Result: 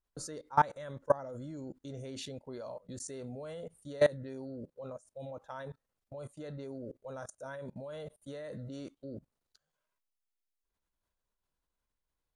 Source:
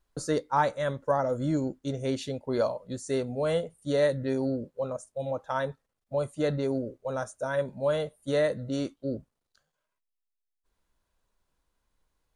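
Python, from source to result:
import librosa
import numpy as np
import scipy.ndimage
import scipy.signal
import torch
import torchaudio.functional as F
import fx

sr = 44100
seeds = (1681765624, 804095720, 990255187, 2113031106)

y = fx.level_steps(x, sr, step_db=22)
y = y * 10.0 ** (1.5 / 20.0)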